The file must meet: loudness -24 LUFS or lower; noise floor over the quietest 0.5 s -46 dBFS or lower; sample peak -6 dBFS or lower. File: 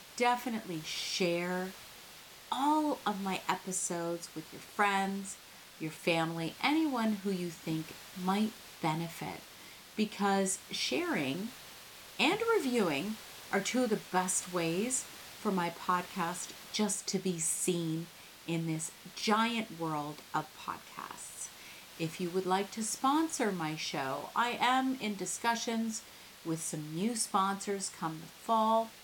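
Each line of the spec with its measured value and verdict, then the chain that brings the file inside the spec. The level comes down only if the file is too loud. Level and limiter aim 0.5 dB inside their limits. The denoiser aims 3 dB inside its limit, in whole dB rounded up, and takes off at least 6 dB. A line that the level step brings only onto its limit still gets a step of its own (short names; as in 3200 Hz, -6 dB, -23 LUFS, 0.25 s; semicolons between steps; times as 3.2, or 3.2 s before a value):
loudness -33.5 LUFS: OK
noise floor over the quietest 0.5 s -53 dBFS: OK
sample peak -15.0 dBFS: OK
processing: none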